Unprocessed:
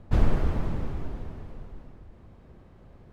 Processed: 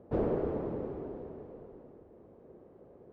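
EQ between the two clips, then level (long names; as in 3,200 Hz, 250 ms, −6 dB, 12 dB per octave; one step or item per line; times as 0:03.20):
resonant band-pass 440 Hz, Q 2.2
+6.5 dB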